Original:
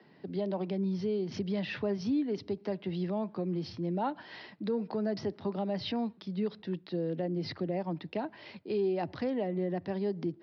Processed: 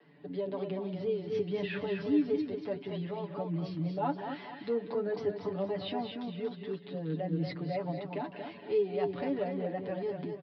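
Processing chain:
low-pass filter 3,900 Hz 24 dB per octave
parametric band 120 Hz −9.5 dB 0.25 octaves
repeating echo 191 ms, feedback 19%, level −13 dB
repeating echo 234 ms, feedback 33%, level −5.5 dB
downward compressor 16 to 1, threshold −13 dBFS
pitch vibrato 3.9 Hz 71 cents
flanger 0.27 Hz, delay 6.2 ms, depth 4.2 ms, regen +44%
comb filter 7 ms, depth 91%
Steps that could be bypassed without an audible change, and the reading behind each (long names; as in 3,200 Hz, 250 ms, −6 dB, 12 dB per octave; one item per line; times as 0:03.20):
downward compressor, threshold −13 dBFS: peak of its input −20.0 dBFS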